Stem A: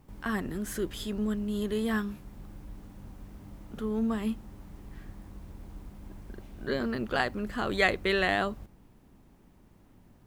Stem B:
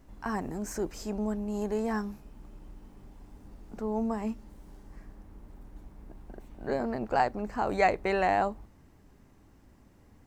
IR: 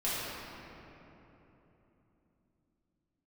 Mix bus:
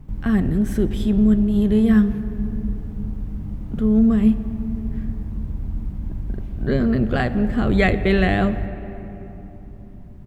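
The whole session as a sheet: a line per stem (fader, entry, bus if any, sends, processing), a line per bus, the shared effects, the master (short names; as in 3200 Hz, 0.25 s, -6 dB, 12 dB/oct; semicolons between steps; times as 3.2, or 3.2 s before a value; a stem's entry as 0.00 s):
+2.5 dB, 0.00 s, send -20 dB, dry
-6.0 dB, 1 ms, send -13.5 dB, dry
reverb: on, RT60 3.4 s, pre-delay 4 ms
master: tone controls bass +15 dB, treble -6 dB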